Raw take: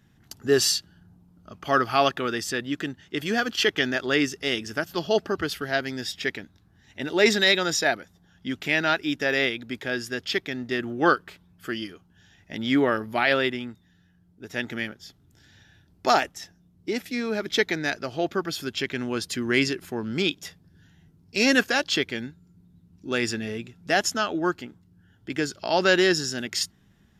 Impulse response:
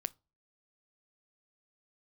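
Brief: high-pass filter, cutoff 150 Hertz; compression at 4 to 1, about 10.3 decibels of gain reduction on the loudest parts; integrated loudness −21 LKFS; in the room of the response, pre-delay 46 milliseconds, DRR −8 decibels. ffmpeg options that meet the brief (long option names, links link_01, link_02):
-filter_complex "[0:a]highpass=150,acompressor=threshold=-27dB:ratio=4,asplit=2[link_01][link_02];[1:a]atrim=start_sample=2205,adelay=46[link_03];[link_02][link_03]afir=irnorm=-1:irlink=0,volume=9dB[link_04];[link_01][link_04]amix=inputs=2:normalize=0,volume=2dB"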